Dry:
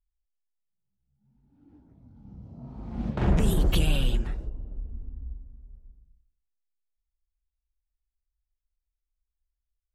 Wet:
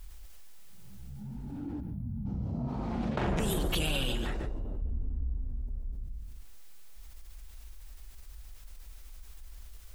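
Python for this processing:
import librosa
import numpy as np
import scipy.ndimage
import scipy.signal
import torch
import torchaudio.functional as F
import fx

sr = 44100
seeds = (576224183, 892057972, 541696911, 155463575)

y = fx.spec_box(x, sr, start_s=1.8, length_s=0.46, low_hz=250.0, high_hz=9500.0, gain_db=-17)
y = fx.low_shelf(y, sr, hz=230.0, db=-11.0, at=(2.68, 4.82))
y = y + 10.0 ** (-13.0 / 20.0) * np.pad(y, (int(142 * sr / 1000.0), 0))[:len(y)]
y = fx.env_flatten(y, sr, amount_pct=70)
y = y * 10.0 ** (-2.0 / 20.0)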